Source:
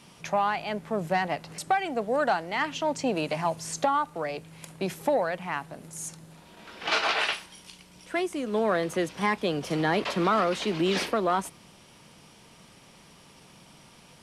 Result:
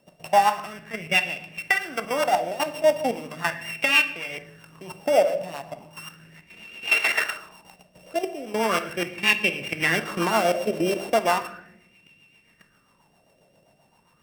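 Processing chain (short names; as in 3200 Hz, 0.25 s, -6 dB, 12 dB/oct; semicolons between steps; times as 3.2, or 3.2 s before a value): sample sorter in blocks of 16 samples; level quantiser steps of 13 dB; rotary speaker horn 7.5 Hz; on a send at -10 dB: reverb RT60 0.90 s, pre-delay 18 ms; on the sum: LFO bell 0.37 Hz 590–2600 Hz +17 dB; gain +1.5 dB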